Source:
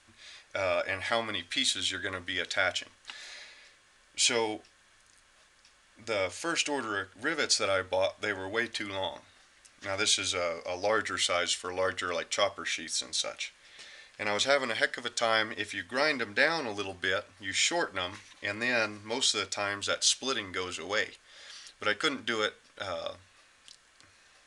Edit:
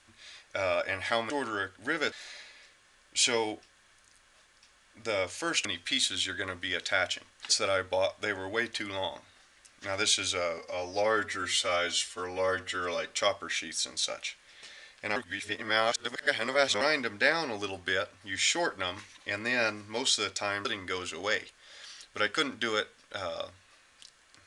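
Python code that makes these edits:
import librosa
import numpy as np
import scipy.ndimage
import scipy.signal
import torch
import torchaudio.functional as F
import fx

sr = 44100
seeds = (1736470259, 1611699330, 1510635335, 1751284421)

y = fx.edit(x, sr, fx.swap(start_s=1.3, length_s=1.84, other_s=6.67, other_length_s=0.82),
    fx.stretch_span(start_s=10.58, length_s=1.68, factor=1.5),
    fx.reverse_span(start_s=14.32, length_s=1.65),
    fx.cut(start_s=19.81, length_s=0.5), tone=tone)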